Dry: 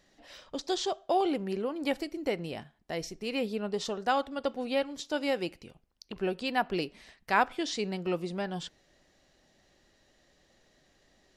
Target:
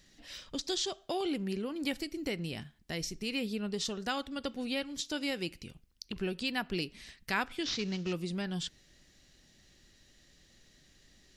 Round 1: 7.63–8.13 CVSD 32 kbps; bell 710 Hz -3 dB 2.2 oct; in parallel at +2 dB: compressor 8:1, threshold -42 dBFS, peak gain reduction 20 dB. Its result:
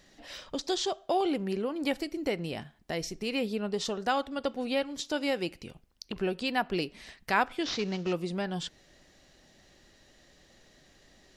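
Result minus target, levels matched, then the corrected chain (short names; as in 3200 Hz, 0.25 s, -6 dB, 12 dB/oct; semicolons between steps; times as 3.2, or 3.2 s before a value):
1000 Hz band +5.0 dB
7.63–8.13 CVSD 32 kbps; bell 710 Hz -14.5 dB 2.2 oct; in parallel at +2 dB: compressor 8:1, threshold -42 dBFS, peak gain reduction 13.5 dB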